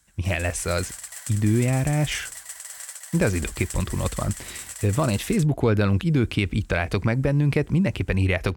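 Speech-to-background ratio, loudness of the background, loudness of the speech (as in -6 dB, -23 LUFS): 12.0 dB, -36.0 LUFS, -24.0 LUFS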